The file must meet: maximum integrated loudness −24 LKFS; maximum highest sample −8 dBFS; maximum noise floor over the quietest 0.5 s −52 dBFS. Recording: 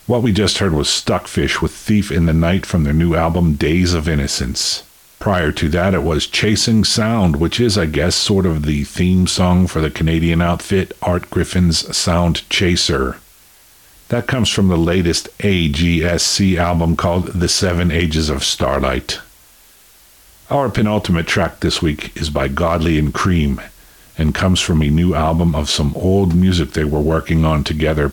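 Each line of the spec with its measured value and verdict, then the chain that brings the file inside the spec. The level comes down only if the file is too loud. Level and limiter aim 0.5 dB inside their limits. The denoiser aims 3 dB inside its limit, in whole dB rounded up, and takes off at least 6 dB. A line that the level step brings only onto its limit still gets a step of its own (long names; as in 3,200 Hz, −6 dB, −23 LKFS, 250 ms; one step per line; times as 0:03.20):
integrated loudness −16.0 LKFS: out of spec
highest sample −5.0 dBFS: out of spec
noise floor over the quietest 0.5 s −47 dBFS: out of spec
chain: level −8.5 dB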